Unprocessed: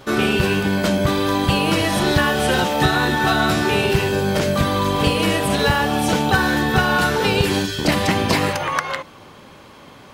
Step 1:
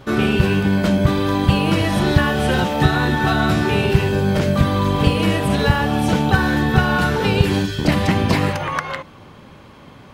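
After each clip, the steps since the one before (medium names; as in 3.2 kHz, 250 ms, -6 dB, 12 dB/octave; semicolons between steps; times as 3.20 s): tone controls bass +7 dB, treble -5 dB; trim -1.5 dB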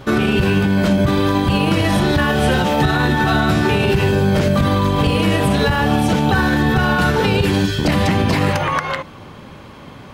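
peak limiter -12 dBFS, peak gain reduction 10.5 dB; trim +5 dB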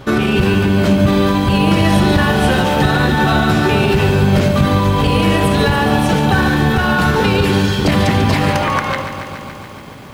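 bit-crushed delay 142 ms, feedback 80%, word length 7-bit, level -10 dB; trim +1.5 dB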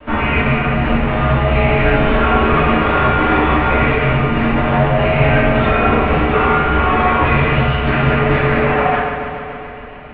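comb filter that takes the minimum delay 6.3 ms; simulated room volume 350 m³, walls mixed, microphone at 2.9 m; mistuned SSB -360 Hz 340–3000 Hz; trim -3 dB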